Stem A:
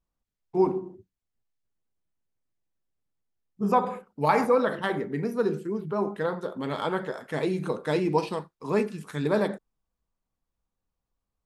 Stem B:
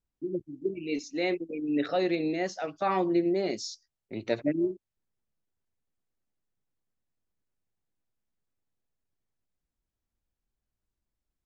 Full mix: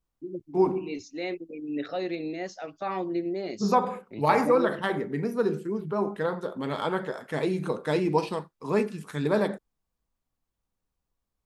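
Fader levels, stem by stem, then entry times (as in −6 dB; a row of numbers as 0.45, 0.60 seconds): 0.0, −4.0 decibels; 0.00, 0.00 seconds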